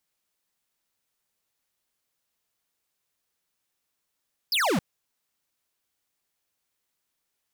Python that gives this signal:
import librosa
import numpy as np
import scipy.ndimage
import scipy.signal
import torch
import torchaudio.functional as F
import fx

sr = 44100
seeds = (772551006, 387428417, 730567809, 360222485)

y = fx.laser_zap(sr, level_db=-23.5, start_hz=5300.0, end_hz=150.0, length_s=0.27, wave='square')